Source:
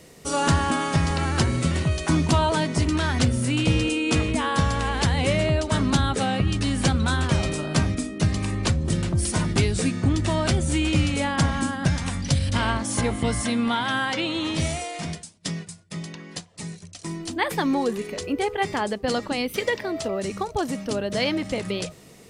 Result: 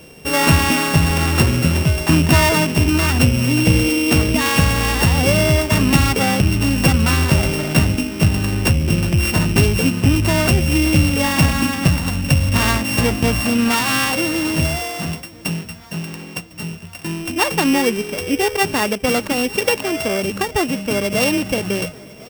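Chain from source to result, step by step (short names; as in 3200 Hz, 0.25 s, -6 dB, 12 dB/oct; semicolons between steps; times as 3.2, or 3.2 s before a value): sample sorter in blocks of 16 samples; feedback echo 1.052 s, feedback 57%, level -23 dB; gain +7 dB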